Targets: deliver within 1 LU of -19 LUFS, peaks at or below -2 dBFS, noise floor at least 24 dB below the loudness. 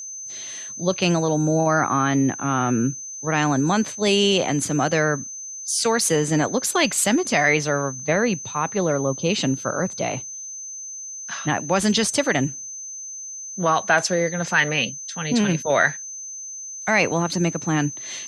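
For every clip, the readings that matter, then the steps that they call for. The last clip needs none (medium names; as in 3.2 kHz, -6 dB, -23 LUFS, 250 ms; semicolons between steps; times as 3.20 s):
steady tone 6.2 kHz; tone level -32 dBFS; loudness -22.0 LUFS; peak level -4.5 dBFS; loudness target -19.0 LUFS
-> band-stop 6.2 kHz, Q 30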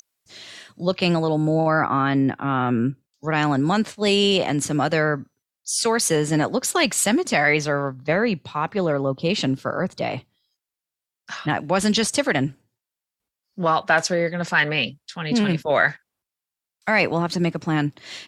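steady tone not found; loudness -21.5 LUFS; peak level -5.0 dBFS; loudness target -19.0 LUFS
-> trim +2.5 dB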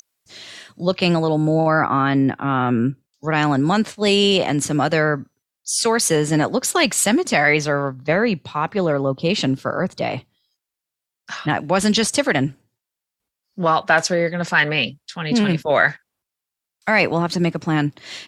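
loudness -19.0 LUFS; peak level -2.5 dBFS; noise floor -85 dBFS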